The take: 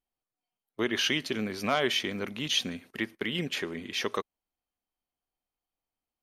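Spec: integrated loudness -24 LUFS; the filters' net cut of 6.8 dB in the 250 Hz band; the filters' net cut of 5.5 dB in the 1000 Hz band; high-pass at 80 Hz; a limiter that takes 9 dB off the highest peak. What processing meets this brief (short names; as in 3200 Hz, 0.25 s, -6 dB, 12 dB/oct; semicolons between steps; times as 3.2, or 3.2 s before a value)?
HPF 80 Hz; bell 250 Hz -9 dB; bell 1000 Hz -7.5 dB; gain +11.5 dB; limiter -12 dBFS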